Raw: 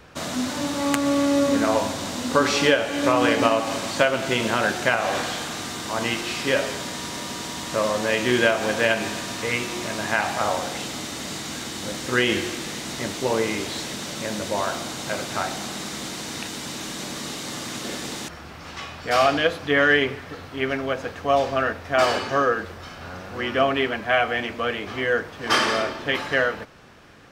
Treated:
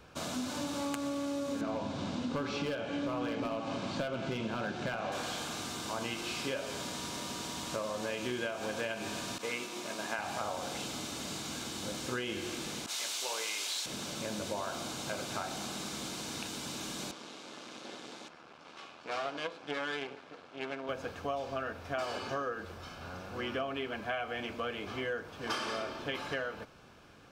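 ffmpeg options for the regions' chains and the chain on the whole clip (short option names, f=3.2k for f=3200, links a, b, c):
-filter_complex "[0:a]asettb=1/sr,asplit=3[a][b][c];[a]atrim=end=1.614[d];[b]atrim=start=1.61:end=5.12,asetpts=PTS-STARTPTS,afade=t=in:d=0.004:c=qsin,afade=t=out:st=3.506:d=0.004:c=qsin,lowpass=4.2k,asoftclip=type=hard:threshold=-15dB,equalizer=f=160:t=o:w=1.8:g=8[e];[c]atrim=start=5.116[f];[d][e]acrossfade=d=0.004:c1=hsin:c2=qsin[g];[g][f]acrossfade=d=0.004:c1=qsin:c2=hsin,asettb=1/sr,asplit=3[h][i][j];[h]atrim=end=9.384[k];[i]atrim=start=9.38:end=10.19,asetpts=PTS-STARTPTS,afade=t=in:d=0.004:c=qsin,afade=t=out:st=0.806:d=0.004:c=qsin,agate=range=-33dB:threshold=-27dB:ratio=3:release=100:detection=peak,highpass=220[l];[j]atrim=start=10.186[m];[k][l]acrossfade=d=0.004:c1=hsin:c2=qsin[n];[n][m]acrossfade=d=0.004:c1=qsin:c2=hsin,asettb=1/sr,asplit=3[o][p][q];[o]atrim=end=12.864[r];[p]atrim=start=12.86:end=13.86,asetpts=PTS-STARTPTS,afade=t=in:d=0.004:c=qsin,afade=t=out:st=0.996:d=0.004:c=qsin,highpass=790,adynamicequalizer=threshold=0.00562:dfrequency=2100:dqfactor=0.7:tfrequency=2100:tqfactor=0.7:attack=5:release=100:ratio=0.375:range=4:mode=boostabove:tftype=highshelf[s];[q]atrim=start=13.856[t];[r][s]acrossfade=d=0.004:c1=hsin:c2=qsin[u];[u][t]acrossfade=d=0.004:c1=qsin:c2=hsin,asettb=1/sr,asplit=3[v][w][x];[v]atrim=end=17.114[y];[w]atrim=start=17.11:end=20.89,asetpts=PTS-STARTPTS,afade=t=in:d=0.004:c=qsin,afade=t=out:st=3.776:d=0.004:c=qsin,aemphasis=mode=reproduction:type=50kf,aeval=exprs='max(val(0),0)':c=same,highpass=260,lowpass=7.5k[z];[x]atrim=start=20.886[aa];[y][z]acrossfade=d=0.004:c1=hsin:c2=qsin[ab];[ab][aa]acrossfade=d=0.004:c1=qsin:c2=hsin,bandreject=f=1.9k:w=5.7,acompressor=threshold=-25dB:ratio=6,volume=-7.5dB"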